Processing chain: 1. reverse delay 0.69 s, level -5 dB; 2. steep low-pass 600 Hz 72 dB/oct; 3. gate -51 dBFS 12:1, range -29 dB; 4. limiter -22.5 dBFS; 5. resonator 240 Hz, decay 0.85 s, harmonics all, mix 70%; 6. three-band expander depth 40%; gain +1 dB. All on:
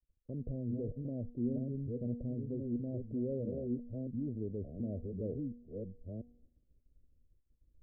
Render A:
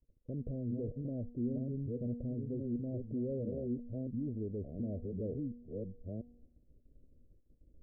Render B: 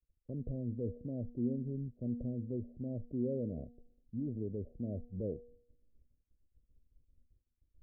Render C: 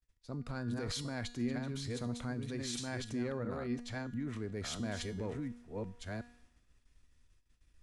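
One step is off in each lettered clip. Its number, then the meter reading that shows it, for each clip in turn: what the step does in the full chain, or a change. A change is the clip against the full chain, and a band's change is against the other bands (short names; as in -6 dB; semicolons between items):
6, crest factor change -2.5 dB; 1, momentary loudness spread change -1 LU; 2, momentary loudness spread change -2 LU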